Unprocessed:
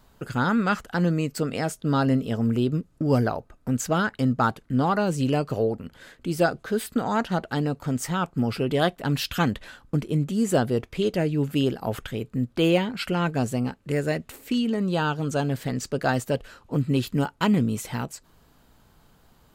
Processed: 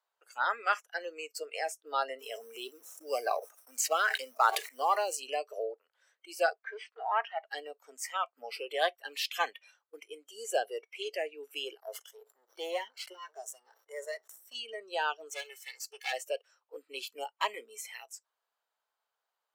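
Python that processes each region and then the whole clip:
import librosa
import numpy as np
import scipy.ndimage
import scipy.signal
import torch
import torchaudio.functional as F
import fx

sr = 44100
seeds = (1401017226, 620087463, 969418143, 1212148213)

y = fx.chain(x, sr, fx.law_mismatch(coded='mu'),
    fx.high_shelf(hz=6000.0, db=7.0),
    fx.sustainer(db_per_s=42.0), at=(2.19, 5.2))
y = fx.chain(y, sr, fx.leveller(passes=1),
    fx.bandpass_q(hz=1600.0, q=0.53),
    fx.air_absorb(metres=120.0), at=(6.55, 7.45))
y = fx.chain(y, sr, fx.halfwave_gain(db=-12.0),
    fx.peak_eq(hz=2500.0, db=-11.0, octaves=0.4),
    fx.sustainer(db_per_s=72.0), at=(11.8, 14.55))
y = fx.chain(y, sr, fx.lower_of_two(delay_ms=2.3),
    fx.highpass(hz=1200.0, slope=6),
    fx.peak_eq(hz=14000.0, db=2.5, octaves=2.8), at=(15.29, 16.13))
y = fx.noise_reduce_blind(y, sr, reduce_db=20)
y = scipy.signal.sosfilt(scipy.signal.bessel(8, 910.0, 'highpass', norm='mag', fs=sr, output='sos'), y)
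y = fx.tilt_eq(y, sr, slope=-2.0)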